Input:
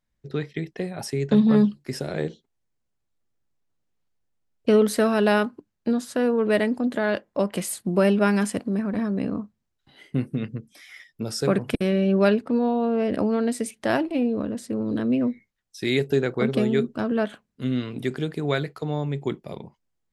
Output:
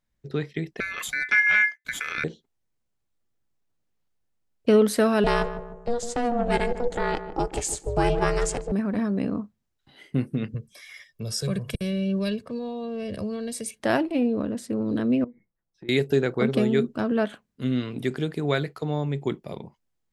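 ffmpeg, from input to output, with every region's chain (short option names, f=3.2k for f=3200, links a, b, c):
-filter_complex "[0:a]asettb=1/sr,asplit=3[a][b][c];[a]atrim=end=0.804[d];[b]atrim=start=0.8:end=2.24,asetpts=PTS-STARTPTS,afade=t=in:d=0.004:c=qsin,afade=t=out:st=1.436:d=0.004:c=qsin,acompressor=mode=upward:threshold=-22dB:ratio=2.5:attack=3.2:release=140:knee=2.83:detection=peak,aeval=exprs='val(0)*sin(2*PI*1900*n/s)':c=same,agate=range=-33dB:threshold=-35dB:ratio=3:release=100:detection=peak[e];[c]atrim=start=2.236[f];[d][e]acrossfade=d=0.004:c1=hsin:c2=qsin[g];[g][f]acrossfade=d=0.004:c1=qsin:c2=hsin,asettb=1/sr,asplit=3[h][i][j];[h]atrim=end=5.244[k];[i]atrim=start=5.24:end=8.72,asetpts=PTS-STARTPTS,afade=t=in:d=0.004:c=qsin,afade=t=out:st=3.476:d=0.004:c=qsin,lowpass=f=7.2k:t=q:w=4.1,aeval=exprs='val(0)*sin(2*PI*240*n/s)':c=same,asplit=2[l][m];[m]adelay=152,lowpass=f=940:p=1,volume=-9dB,asplit=2[n][o];[o]adelay=152,lowpass=f=940:p=1,volume=0.52,asplit=2[p][q];[q]adelay=152,lowpass=f=940:p=1,volume=0.52,asplit=2[r][s];[s]adelay=152,lowpass=f=940:p=1,volume=0.52,asplit=2[t][u];[u]adelay=152,lowpass=f=940:p=1,volume=0.52,asplit=2[v][w];[w]adelay=152,lowpass=f=940:p=1,volume=0.52[x];[l][n][p][r][t][v][x]amix=inputs=7:normalize=0,atrim=end_sample=153468[y];[j]atrim=start=8.716[z];[k][y]acrossfade=d=0.004:c1=hsin:c2=qsin[aa];[aa][z]acrossfade=d=0.004:c1=qsin:c2=hsin,asettb=1/sr,asplit=3[ab][ac][ad];[ab]atrim=end=10.544[ae];[ac]atrim=start=10.54:end=13.8,asetpts=PTS-STARTPTS,afade=t=in:d=0.004:c=qsin,afade=t=out:st=3.256:d=0.004:c=qsin,aecho=1:1:1.8:0.72,atrim=end_sample=143766,acrossover=split=240|3000[af][ag][ah];[ag]acompressor=threshold=-42dB:ratio=2.5:attack=3.2:release=140:knee=2.83:detection=peak[ai];[af][ai][ah]amix=inputs=3:normalize=0[aj];[ad]atrim=start=13.796[ak];[ae][aj]acrossfade=d=0.004:c1=hsin:c2=qsin[al];[al][ak]acrossfade=d=0.004:c1=qsin:c2=hsin,asettb=1/sr,asplit=3[am][an][ao];[am]atrim=end=15.244[ap];[an]atrim=start=15.24:end=15.89,asetpts=PTS-STARTPTS,afade=t=in:d=0.004:c=qsin,afade=t=out:st=0.646:d=0.004:c=qsin,lowpass=1k,aecho=1:1:6:0.36,atrim=end_sample=28665,acompressor=threshold=-44dB:ratio=3:attack=3.2:release=140:knee=1:detection=peak[aq];[ao]atrim=start=15.886[ar];[ap][aq]acrossfade=d=0.004:c1=hsin:c2=qsin[as];[as][ar]acrossfade=d=0.004:c1=qsin:c2=hsin"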